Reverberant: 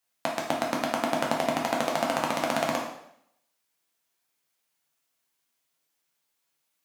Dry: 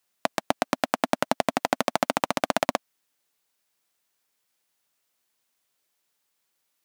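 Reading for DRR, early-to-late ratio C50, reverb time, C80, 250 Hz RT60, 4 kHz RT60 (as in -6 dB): -2.0 dB, 4.5 dB, 0.70 s, 8.0 dB, 0.75 s, 0.70 s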